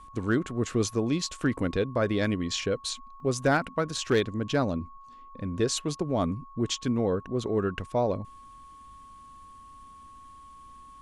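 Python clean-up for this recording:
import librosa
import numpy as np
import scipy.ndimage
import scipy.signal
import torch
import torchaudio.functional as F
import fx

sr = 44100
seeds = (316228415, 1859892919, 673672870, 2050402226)

y = fx.fix_declip(x, sr, threshold_db=-15.5)
y = fx.notch(y, sr, hz=1100.0, q=30.0)
y = fx.fix_interpolate(y, sr, at_s=(3.2,), length_ms=1.7)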